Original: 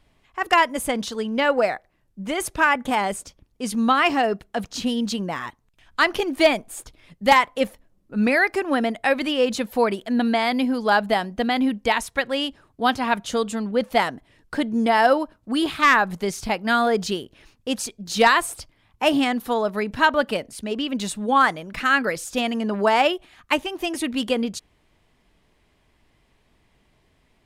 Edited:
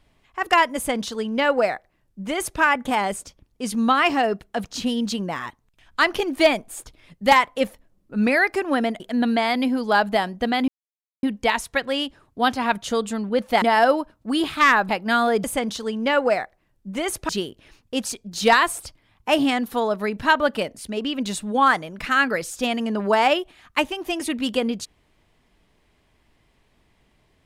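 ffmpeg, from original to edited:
ffmpeg -i in.wav -filter_complex "[0:a]asplit=7[link_01][link_02][link_03][link_04][link_05][link_06][link_07];[link_01]atrim=end=9.002[link_08];[link_02]atrim=start=9.968:end=11.65,asetpts=PTS-STARTPTS,afade=type=out:start_time=1.678:duration=0.004:curve=hsin,apad=pad_dur=0.55[link_09];[link_03]atrim=start=11.65:end=14.042,asetpts=PTS-STARTPTS,afade=type=in:duration=0.004:curve=hsin[link_10];[link_04]atrim=start=14.838:end=16.112[link_11];[link_05]atrim=start=16.478:end=17.032[link_12];[link_06]atrim=start=0.758:end=2.612[link_13];[link_07]atrim=start=17.028[link_14];[link_09][link_10]concat=n=2:v=0:a=1[link_15];[link_08][link_15]acrossfade=duration=0.004:curve1=hsin:curve2=hsin[link_16];[link_16][link_11]acrossfade=duration=0.004:curve1=hsin:curve2=hsin[link_17];[link_17][link_12]acrossfade=duration=0.004:curve1=hsin:curve2=hsin[link_18];[link_18][link_13]acrossfade=duration=0.004:curve1=hsin:curve2=hsin[link_19];[link_19][link_14]acrossfade=duration=0.004:curve1=hsin:curve2=hsin" out.wav

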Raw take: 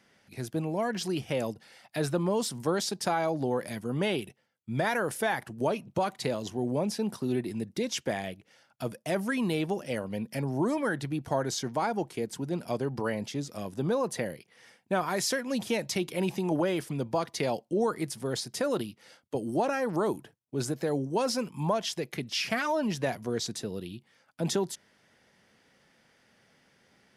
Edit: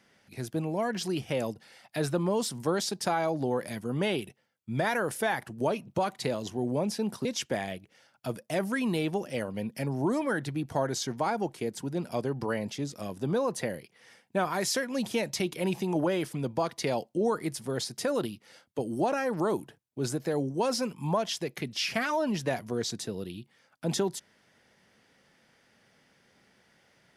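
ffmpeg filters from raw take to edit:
ffmpeg -i in.wav -filter_complex "[0:a]asplit=2[link_01][link_02];[link_01]atrim=end=7.252[link_03];[link_02]atrim=start=7.808[link_04];[link_03][link_04]acrossfade=duration=0.004:curve1=hsin:curve2=hsin" out.wav

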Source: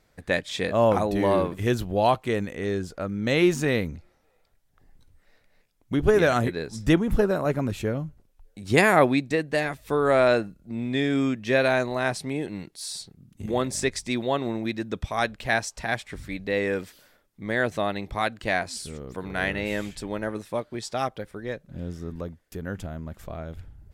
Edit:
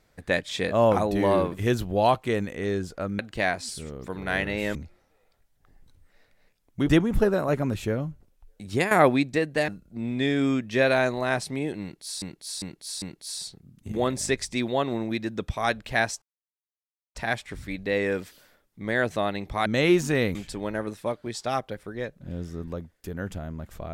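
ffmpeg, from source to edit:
ffmpeg -i in.wav -filter_complex "[0:a]asplit=12[link_01][link_02][link_03][link_04][link_05][link_06][link_07][link_08][link_09][link_10][link_11][link_12];[link_01]atrim=end=3.192[link_13];[link_02]atrim=start=18.268:end=19.832[link_14];[link_03]atrim=start=3.878:end=6.022[link_15];[link_04]atrim=start=6.858:end=8.88,asetpts=PTS-STARTPTS,afade=type=out:start_time=1.762:duration=0.26:silence=0.223872[link_16];[link_05]atrim=start=8.88:end=9.652,asetpts=PTS-STARTPTS,afade=type=in:duration=0.004:curve=hsin:silence=0.223872[link_17];[link_06]atrim=start=10.418:end=12.962[link_18];[link_07]atrim=start=12.558:end=12.962[link_19];[link_08]atrim=start=12.558:end=12.962[link_20];[link_09]atrim=start=12.558:end=15.76,asetpts=PTS-STARTPTS,afade=type=out:start_time=3.198:duration=0.004:curve=hsin,apad=pad_dur=0.93[link_21];[link_10]atrim=start=15.76:end=18.272,asetpts=PTS-STARTPTS,afade=type=in:duration=0.004:curve=hsin[link_22];[link_11]atrim=start=3.188:end=3.882[link_23];[link_12]atrim=start=19.828[link_24];[link_13][link_14]acrossfade=duration=0.004:curve1=hsin:curve2=hsin[link_25];[link_25][link_15]acrossfade=duration=0.004:curve1=hsin:curve2=hsin[link_26];[link_16][link_17]concat=n=2:v=0:a=1[link_27];[link_26][link_27]acrossfade=duration=0.004:curve1=hsin:curve2=hsin[link_28];[link_28][link_18]acrossfade=duration=0.004:curve1=hsin:curve2=hsin[link_29];[link_29][link_19]acrossfade=duration=0.004:curve1=hsin:curve2=hsin[link_30];[link_30][link_20]acrossfade=duration=0.004:curve1=hsin:curve2=hsin[link_31];[link_21][link_22]concat=n=2:v=0:a=1[link_32];[link_31][link_32]acrossfade=duration=0.004:curve1=hsin:curve2=hsin[link_33];[link_33][link_23]acrossfade=duration=0.004:curve1=hsin:curve2=hsin[link_34];[link_34][link_24]acrossfade=duration=0.004:curve1=hsin:curve2=hsin" out.wav

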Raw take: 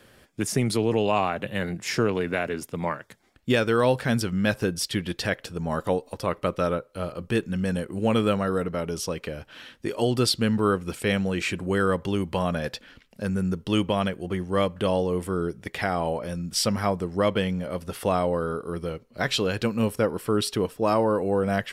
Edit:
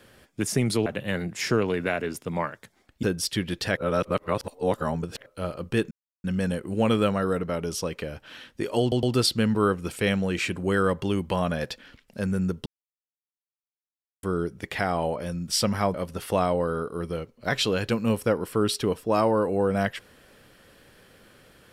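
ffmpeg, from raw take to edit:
ffmpeg -i in.wav -filter_complex "[0:a]asplit=11[link_01][link_02][link_03][link_04][link_05][link_06][link_07][link_08][link_09][link_10][link_11];[link_01]atrim=end=0.862[link_12];[link_02]atrim=start=1.328:end=3.502[link_13];[link_03]atrim=start=4.608:end=5.352[link_14];[link_04]atrim=start=5.348:end=6.842,asetpts=PTS-STARTPTS,areverse[link_15];[link_05]atrim=start=6.838:end=7.49,asetpts=PTS-STARTPTS,afade=type=out:start_time=0.648:duration=0.004:curve=hsin,apad=pad_dur=0.33[link_16];[link_06]atrim=start=7.49:end=10.172,asetpts=PTS-STARTPTS,afade=type=in:duration=0.004:curve=hsin[link_17];[link_07]atrim=start=10.058:end=10.172[link_18];[link_08]atrim=start=10.058:end=13.69,asetpts=PTS-STARTPTS,afade=type=out:start_time=3.628:duration=0.004:curve=hsin[link_19];[link_09]atrim=start=13.69:end=15.26,asetpts=PTS-STARTPTS,volume=0[link_20];[link_10]atrim=start=15.26:end=16.972,asetpts=PTS-STARTPTS,afade=type=in:duration=0.004:curve=hsin[link_21];[link_11]atrim=start=17.668[link_22];[link_12][link_13]acrossfade=duration=0.004:curve1=hsin:curve2=hsin[link_23];[link_23][link_14]acrossfade=duration=0.004:curve1=hsin:curve2=hsin[link_24];[link_24][link_15]acrossfade=duration=0.004:curve1=hsin:curve2=hsin[link_25];[link_16][link_17]concat=n=2:v=0:a=1[link_26];[link_25][link_26]acrossfade=duration=0.004:curve1=hsin:curve2=hsin[link_27];[link_27][link_18]acrossfade=duration=0.004:curve1=hsin:curve2=hsin[link_28];[link_19][link_20][link_21]concat=n=3:v=0:a=1[link_29];[link_28][link_29]acrossfade=duration=0.004:curve1=hsin:curve2=hsin[link_30];[link_30][link_22]acrossfade=duration=0.004:curve1=hsin:curve2=hsin" out.wav

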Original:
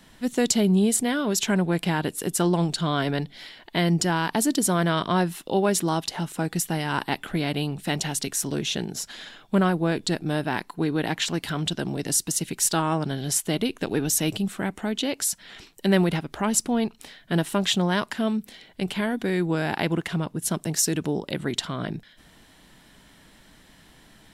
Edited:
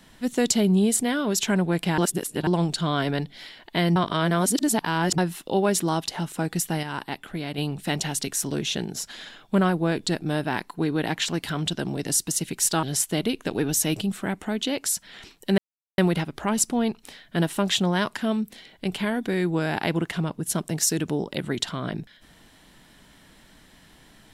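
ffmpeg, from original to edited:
ffmpeg -i in.wav -filter_complex "[0:a]asplit=9[link_01][link_02][link_03][link_04][link_05][link_06][link_07][link_08][link_09];[link_01]atrim=end=1.982[link_10];[link_02]atrim=start=1.978:end=2.472,asetpts=PTS-STARTPTS,areverse[link_11];[link_03]atrim=start=2.468:end=3.962[link_12];[link_04]atrim=start=3.958:end=5.182,asetpts=PTS-STARTPTS,areverse[link_13];[link_05]atrim=start=5.178:end=6.832[link_14];[link_06]atrim=start=6.828:end=7.582,asetpts=PTS-STARTPTS,volume=-5.5dB[link_15];[link_07]atrim=start=7.578:end=12.832[link_16];[link_08]atrim=start=13.188:end=15.94,asetpts=PTS-STARTPTS,afade=type=out:start_time=2.748:duration=0.004:curve=hsin,apad=pad_dur=0.4[link_17];[link_09]atrim=start=15.94,asetpts=PTS-STARTPTS,afade=type=in:duration=0.004:curve=hsin[link_18];[link_10][link_11]acrossfade=duration=0.004:curve1=hsin:curve2=hsin[link_19];[link_19][link_12]acrossfade=duration=0.004:curve1=hsin:curve2=hsin[link_20];[link_20][link_13]acrossfade=duration=0.004:curve1=hsin:curve2=hsin[link_21];[link_21][link_14]acrossfade=duration=0.004:curve1=hsin:curve2=hsin[link_22];[link_22][link_15]acrossfade=duration=0.004:curve1=hsin:curve2=hsin[link_23];[link_23][link_16]acrossfade=duration=0.004:curve1=hsin:curve2=hsin[link_24];[link_17][link_18]concat=n=2:v=0:a=1[link_25];[link_24][link_25]acrossfade=duration=0.004:curve1=hsin:curve2=hsin" out.wav

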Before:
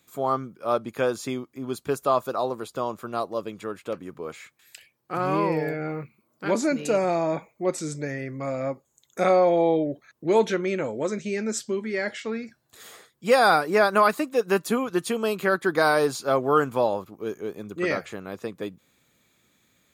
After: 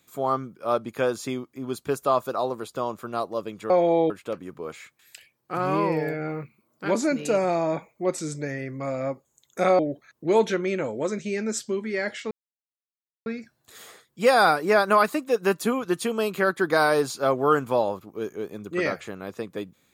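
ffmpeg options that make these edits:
ffmpeg -i in.wav -filter_complex "[0:a]asplit=5[link_01][link_02][link_03][link_04][link_05];[link_01]atrim=end=3.702[link_06];[link_02]atrim=start=9.388:end=9.792[link_07];[link_03]atrim=start=3.698:end=9.392[link_08];[link_04]atrim=start=9.788:end=12.31,asetpts=PTS-STARTPTS,afade=type=out:start_time=2.518:duration=0.004:curve=hsin,apad=pad_dur=0.95[link_09];[link_05]atrim=start=12.31,asetpts=PTS-STARTPTS,afade=type=in:duration=0.004:curve=hsin[link_10];[link_06][link_07]acrossfade=duration=0.004:curve1=hsin:curve2=hsin[link_11];[link_11][link_08]acrossfade=duration=0.004:curve1=hsin:curve2=hsin[link_12];[link_09][link_10]concat=n=2:v=0:a=1[link_13];[link_12][link_13]acrossfade=duration=0.004:curve1=hsin:curve2=hsin" out.wav

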